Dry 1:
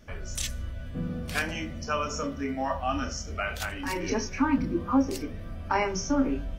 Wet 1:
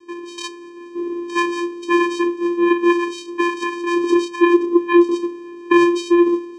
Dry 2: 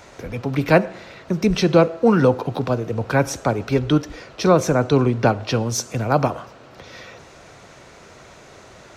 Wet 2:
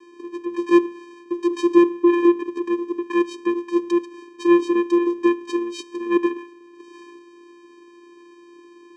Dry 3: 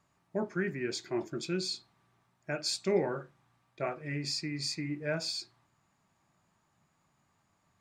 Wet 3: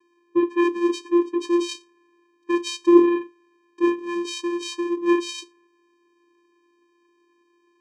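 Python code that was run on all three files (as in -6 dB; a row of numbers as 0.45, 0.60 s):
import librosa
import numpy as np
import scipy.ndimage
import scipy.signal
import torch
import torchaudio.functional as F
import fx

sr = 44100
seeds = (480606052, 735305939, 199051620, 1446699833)

y = fx.dynamic_eq(x, sr, hz=1800.0, q=0.84, threshold_db=-37.0, ratio=4.0, max_db=3)
y = fx.highpass(y, sr, hz=170.0, slope=6)
y = fx.vocoder(y, sr, bands=4, carrier='square', carrier_hz=346.0)
y = librosa.util.normalize(y) * 10.0 ** (-3 / 20.0)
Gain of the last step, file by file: +13.0, +0.5, +14.5 dB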